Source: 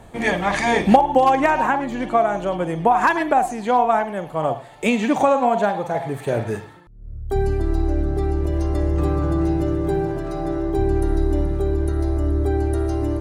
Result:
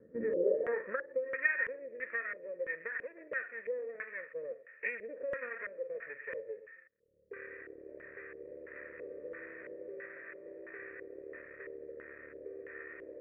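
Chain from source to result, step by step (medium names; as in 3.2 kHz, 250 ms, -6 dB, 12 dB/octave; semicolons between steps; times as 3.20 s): high-pass 56 Hz 12 dB/octave; peaking EQ 450 Hz +13 dB 0.28 oct; compression 6:1, threshold -16 dBFS, peak gain reduction 11.5 dB; half-wave rectifier; band-pass sweep 240 Hz -> 2.3 kHz, 0.20–1.18 s; cascade formant filter e; LFO low-pass square 1.5 Hz 510–1500 Hz; static phaser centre 1.9 kHz, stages 4; trim +12.5 dB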